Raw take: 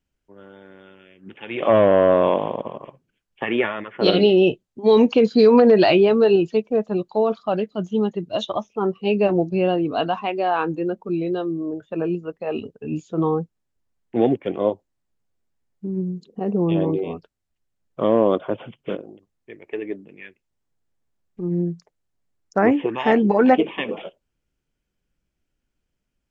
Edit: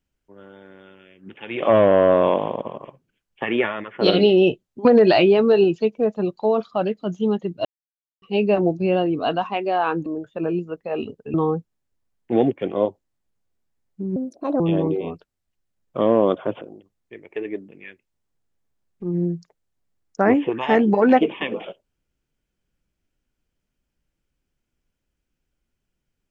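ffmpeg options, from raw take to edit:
ffmpeg -i in.wav -filter_complex "[0:a]asplit=9[link_01][link_02][link_03][link_04][link_05][link_06][link_07][link_08][link_09];[link_01]atrim=end=4.852[link_10];[link_02]atrim=start=5.568:end=8.37,asetpts=PTS-STARTPTS,afade=type=out:start_time=2.798:duration=0.004:curve=hsin[link_11];[link_03]atrim=start=8.37:end=8.94,asetpts=PTS-STARTPTS,volume=0[link_12];[link_04]atrim=start=8.94:end=10.782,asetpts=PTS-STARTPTS,afade=type=in:duration=0.004:curve=hsin[link_13];[link_05]atrim=start=11.618:end=12.902[link_14];[link_06]atrim=start=13.178:end=16.004[link_15];[link_07]atrim=start=16:end=16.63,asetpts=PTS-STARTPTS,asetrate=63063,aresample=44100[link_16];[link_08]atrim=start=16.626:end=18.642[link_17];[link_09]atrim=start=18.978[link_18];[link_11][link_12][link_13]concat=n=3:v=0:a=1[link_19];[link_10][link_19]acrossfade=duration=0.004:curve1=hsin:curve2=hsin[link_20];[link_20][link_14]acrossfade=duration=0.004:curve1=hsin:curve2=hsin[link_21];[link_21][link_15]acrossfade=duration=0.004:curve1=hsin:curve2=hsin[link_22];[link_22][link_16]acrossfade=duration=0.004:curve1=hsin:curve2=hsin[link_23];[link_23][link_17]acrossfade=duration=0.004:curve1=hsin:curve2=hsin[link_24];[link_24][link_18]acrossfade=duration=0.004:curve1=hsin:curve2=hsin" out.wav

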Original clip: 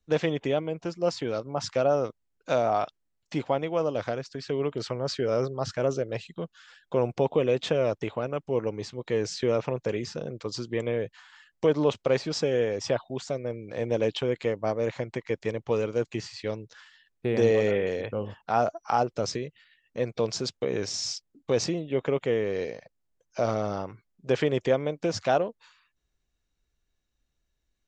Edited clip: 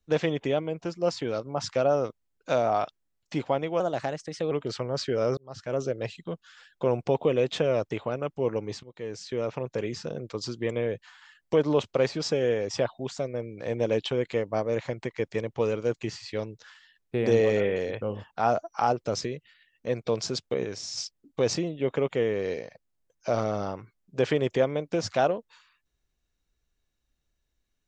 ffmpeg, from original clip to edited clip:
ffmpeg -i in.wav -filter_complex "[0:a]asplit=7[link_01][link_02][link_03][link_04][link_05][link_06][link_07];[link_01]atrim=end=3.804[link_08];[link_02]atrim=start=3.8:end=4.62,asetpts=PTS-STARTPTS,asetrate=50715,aresample=44100,atrim=end_sample=31445,asetpts=PTS-STARTPTS[link_09];[link_03]atrim=start=4.616:end=5.48,asetpts=PTS-STARTPTS,afade=type=out:start_time=0.86:duration=0.004:curve=hsin[link_10];[link_04]atrim=start=5.48:end=8.94,asetpts=PTS-STARTPTS,afade=type=in:duration=0.54,afade=type=out:start_time=3.456:duration=0.004:curve=hsin:silence=0.199526[link_11];[link_05]atrim=start=8.94:end=20.752,asetpts=PTS-STARTPTS,afade=type=in:duration=1.2:silence=0.199526[link_12];[link_06]atrim=start=20.748:end=21.082,asetpts=PTS-STARTPTS,volume=-5dB[link_13];[link_07]atrim=start=21.078[link_14];[link_08][link_09]acrossfade=duration=0.004:curve1=hsin:curve2=hsin[link_15];[link_10][link_11][link_12]concat=n=3:v=0:a=1[link_16];[link_15][link_16]acrossfade=duration=0.004:curve1=hsin:curve2=hsin[link_17];[link_17][link_13]acrossfade=duration=0.004:curve1=hsin:curve2=hsin[link_18];[link_18][link_14]acrossfade=duration=0.004:curve1=hsin:curve2=hsin" out.wav

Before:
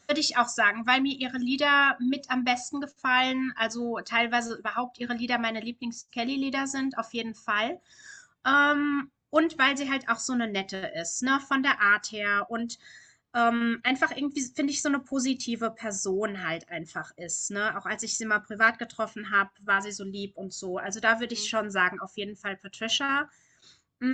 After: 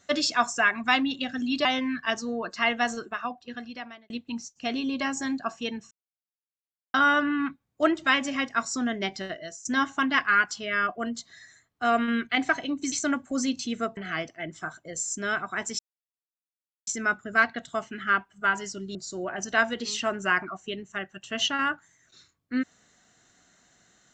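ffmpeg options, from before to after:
ffmpeg -i in.wav -filter_complex "[0:a]asplit=10[link_01][link_02][link_03][link_04][link_05][link_06][link_07][link_08][link_09][link_10];[link_01]atrim=end=1.652[link_11];[link_02]atrim=start=3.178:end=5.63,asetpts=PTS-STARTPTS,afade=type=out:start_time=1.272:duration=1.18[link_12];[link_03]atrim=start=5.63:end=7.44,asetpts=PTS-STARTPTS,afade=type=in:duration=0.004:curve=hsin,afade=type=out:start_time=1.806:duration=0.004:curve=hsin[link_13];[link_04]atrim=start=7.44:end=8.47,asetpts=PTS-STARTPTS,volume=0[link_14];[link_05]atrim=start=8.47:end=11.18,asetpts=PTS-STARTPTS,afade=type=in:duration=0.004:curve=hsin,afade=type=out:start_time=2.3:duration=0.41:silence=0.11885[link_15];[link_06]atrim=start=11.18:end=14.452,asetpts=PTS-STARTPTS,afade=type=in:duration=0.004:curve=hsin:silence=0.11885[link_16];[link_07]atrim=start=14.728:end=15.782[link_17];[link_08]atrim=start=16.298:end=18.12,asetpts=PTS-STARTPTS,afade=type=out:start_time=1.818:duration=0.004:curve=hsin,apad=pad_dur=1.08[link_18];[link_09]atrim=start=18.12:end=20.202,asetpts=PTS-STARTPTS,afade=type=in:duration=0.004:curve=hsin[link_19];[link_10]atrim=start=20.448[link_20];[link_12][link_13][link_14][link_15][link_16]concat=n=5:v=0:a=1[link_21];[link_11][link_21]acrossfade=duration=0.004:curve1=hsin:curve2=hsin[link_22];[link_22][link_17]acrossfade=duration=0.004:curve1=hsin:curve2=hsin[link_23];[link_18][link_19]concat=n=2:v=0:a=1[link_24];[link_23][link_24]acrossfade=duration=0.004:curve1=hsin:curve2=hsin[link_25];[link_25][link_20]acrossfade=duration=0.004:curve1=hsin:curve2=hsin" out.wav

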